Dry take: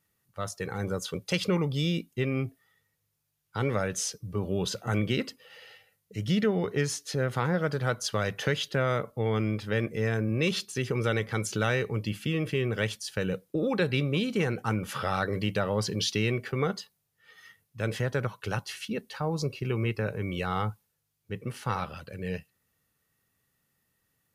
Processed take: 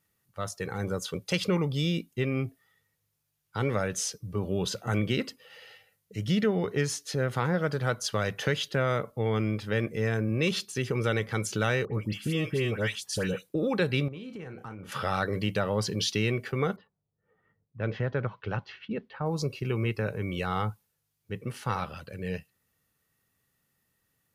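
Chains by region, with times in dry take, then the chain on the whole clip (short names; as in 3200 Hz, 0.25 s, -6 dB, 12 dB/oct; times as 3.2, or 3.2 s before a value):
11.85–13.49 dynamic EQ 7900 Hz, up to +4 dB, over -52 dBFS, Q 0.78 + dispersion highs, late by 91 ms, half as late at 1900 Hz
14.08–14.92 high shelf 3900 Hz -11 dB + doubler 31 ms -9 dB + compressor, threshold -38 dBFS
16.76–19.26 low-pass opened by the level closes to 490 Hz, open at -29.5 dBFS + careless resampling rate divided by 3×, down none, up filtered + air absorption 320 m
whole clip: dry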